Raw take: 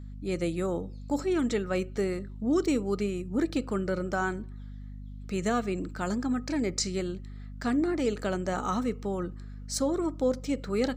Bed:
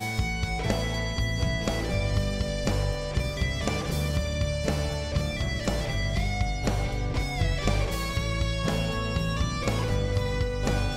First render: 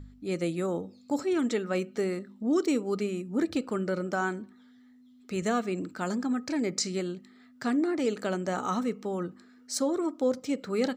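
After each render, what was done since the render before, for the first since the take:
hum removal 50 Hz, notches 4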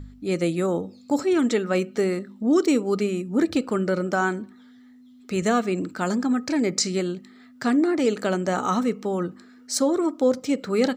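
level +6.5 dB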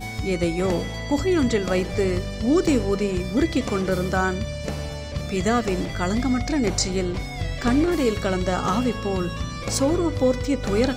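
mix in bed −2 dB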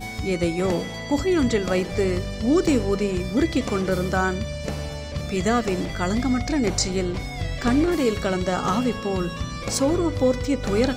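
hum removal 54.37 Hz, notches 2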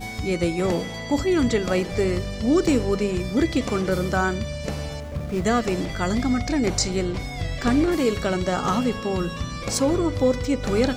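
0:05.00–0:05.45: running median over 15 samples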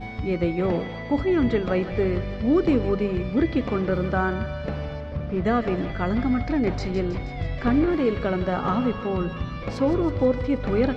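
high-frequency loss of the air 350 metres
feedback echo with a high-pass in the loop 160 ms, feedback 72%, high-pass 800 Hz, level −11 dB

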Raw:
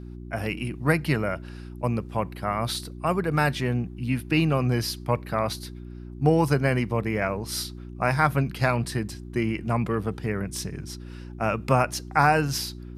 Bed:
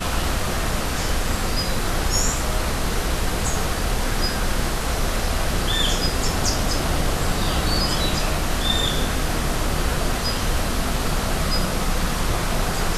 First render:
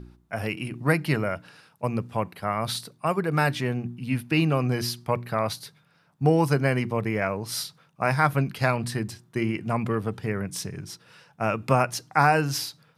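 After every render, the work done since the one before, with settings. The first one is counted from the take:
hum removal 60 Hz, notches 6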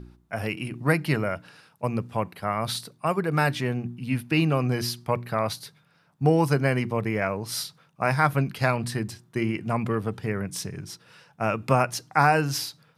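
no processing that can be heard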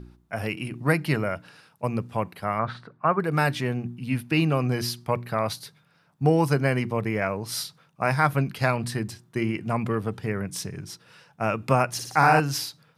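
0:02.59–0:03.20: low-pass with resonance 1,500 Hz, resonance Q 2.4
0:11.90–0:12.40: flutter between parallel walls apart 10 metres, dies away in 0.75 s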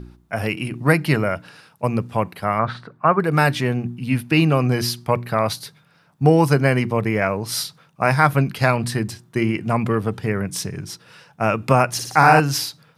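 level +6 dB
brickwall limiter −1 dBFS, peak gain reduction 1.5 dB

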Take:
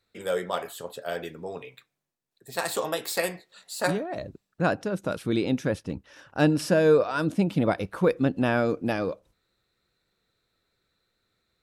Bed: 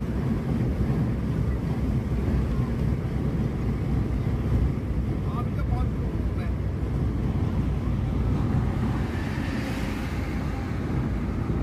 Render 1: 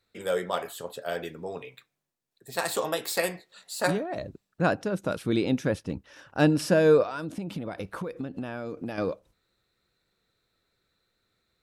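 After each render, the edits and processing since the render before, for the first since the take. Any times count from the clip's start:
0:07.03–0:08.98: downward compressor 16 to 1, threshold −29 dBFS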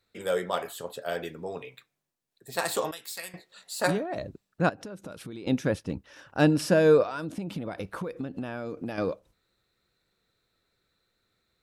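0:02.91–0:03.34: guitar amp tone stack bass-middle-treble 5-5-5
0:04.69–0:05.47: downward compressor 10 to 1, threshold −36 dBFS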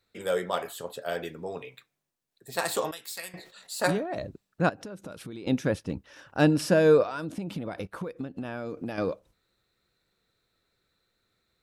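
0:03.33–0:04.26: level that may fall only so fast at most 110 dB per second
0:07.87–0:08.45: expander for the loud parts, over −53 dBFS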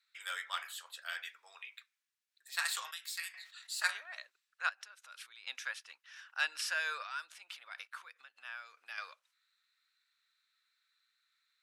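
high-pass filter 1,400 Hz 24 dB per octave
high-shelf EQ 9,000 Hz −10 dB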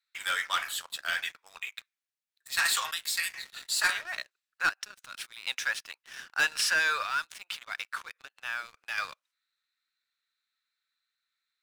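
leveller curve on the samples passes 3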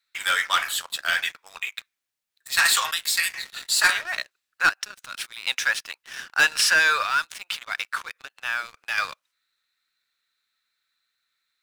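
level +7.5 dB

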